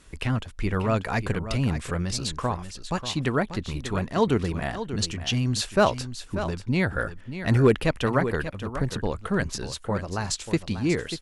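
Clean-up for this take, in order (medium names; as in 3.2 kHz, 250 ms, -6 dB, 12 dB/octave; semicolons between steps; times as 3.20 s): clip repair -9.5 dBFS; inverse comb 589 ms -11 dB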